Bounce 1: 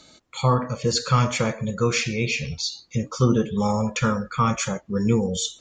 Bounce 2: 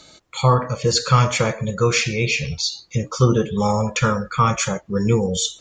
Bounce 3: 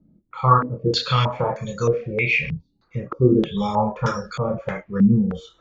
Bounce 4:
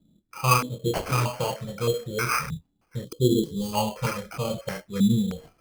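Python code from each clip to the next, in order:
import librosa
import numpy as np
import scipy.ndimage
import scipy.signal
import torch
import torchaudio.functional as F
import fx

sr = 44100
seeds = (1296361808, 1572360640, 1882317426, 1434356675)

y1 = fx.peak_eq(x, sr, hz=240.0, db=-8.0, octaves=0.35)
y1 = y1 * 10.0 ** (4.5 / 20.0)
y2 = fx.chorus_voices(y1, sr, voices=6, hz=0.51, base_ms=28, depth_ms=4.1, mix_pct=40)
y2 = fx.filter_held_lowpass(y2, sr, hz=3.2, low_hz=220.0, high_hz=5500.0)
y2 = y2 * 10.0 ** (-2.0 / 20.0)
y3 = fx.sample_hold(y2, sr, seeds[0], rate_hz=3700.0, jitter_pct=0)
y3 = fx.spec_box(y3, sr, start_s=3.05, length_s=0.68, low_hz=530.0, high_hz=2900.0, gain_db=-17)
y3 = y3 * 10.0 ** (-5.0 / 20.0)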